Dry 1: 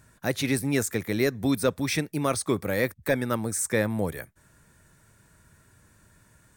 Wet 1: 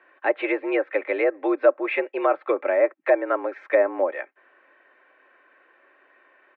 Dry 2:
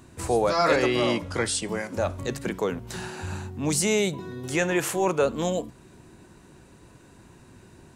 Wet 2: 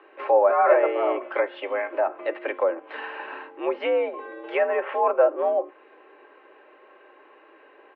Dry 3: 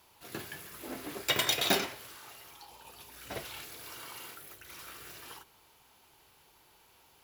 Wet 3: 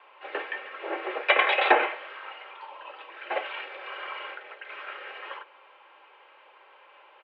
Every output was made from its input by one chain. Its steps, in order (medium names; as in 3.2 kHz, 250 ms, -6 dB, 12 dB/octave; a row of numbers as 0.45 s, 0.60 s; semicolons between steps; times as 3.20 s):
comb 4 ms, depth 48%; mistuned SSB +76 Hz 340–2700 Hz; low-pass that closes with the level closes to 1.2 kHz, closed at -23.5 dBFS; peak normalisation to -6 dBFS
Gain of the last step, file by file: +6.5 dB, +4.0 dB, +11.5 dB